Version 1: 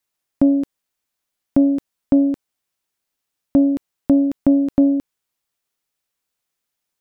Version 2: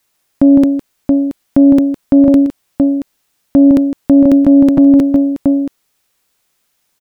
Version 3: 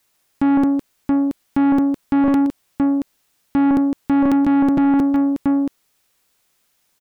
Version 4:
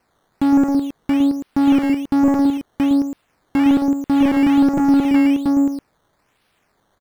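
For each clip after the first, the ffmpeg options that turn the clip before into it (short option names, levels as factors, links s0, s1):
-af "aecho=1:1:159|677:0.266|0.237,alimiter=level_in=6.31:limit=0.891:release=50:level=0:latency=1,volume=0.891"
-af "asoftclip=type=tanh:threshold=0.251,volume=0.891"
-filter_complex "[0:a]asplit=2[s0][s1];[s1]adelay=110.8,volume=0.501,highshelf=f=4000:g=-2.49[s2];[s0][s2]amix=inputs=2:normalize=0,acrusher=samples=12:mix=1:aa=0.000001:lfo=1:lforange=12:lforate=1.2,acrossover=split=2600[s3][s4];[s4]acompressor=threshold=0.01:ratio=4:attack=1:release=60[s5];[s3][s5]amix=inputs=2:normalize=0"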